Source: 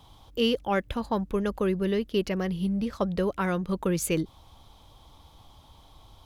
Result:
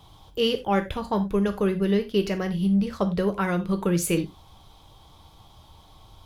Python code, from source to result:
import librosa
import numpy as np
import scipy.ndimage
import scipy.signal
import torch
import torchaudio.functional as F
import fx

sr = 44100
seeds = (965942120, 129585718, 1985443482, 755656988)

y = fx.rev_gated(x, sr, seeds[0], gate_ms=120, shape='falling', drr_db=6.0)
y = y * librosa.db_to_amplitude(1.5)